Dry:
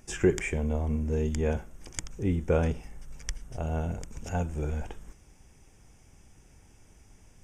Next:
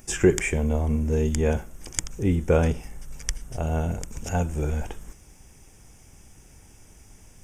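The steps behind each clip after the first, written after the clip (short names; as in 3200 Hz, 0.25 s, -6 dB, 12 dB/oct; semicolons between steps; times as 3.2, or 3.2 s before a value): high shelf 8400 Hz +10.5 dB; gain +5 dB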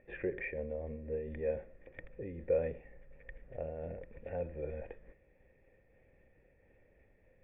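in parallel at 0 dB: negative-ratio compressor -27 dBFS, ratio -1; on the sum: vocal tract filter e; noise-modulated level, depth 50%; gain -3.5 dB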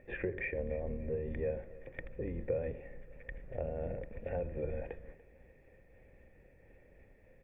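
octaver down 2 oct, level -1 dB; compressor 3:1, threshold -38 dBFS, peak gain reduction 10 dB; feedback echo 0.29 s, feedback 36%, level -20 dB; gain +4.5 dB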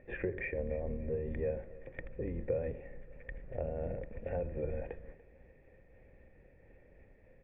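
air absorption 200 m; gain +1 dB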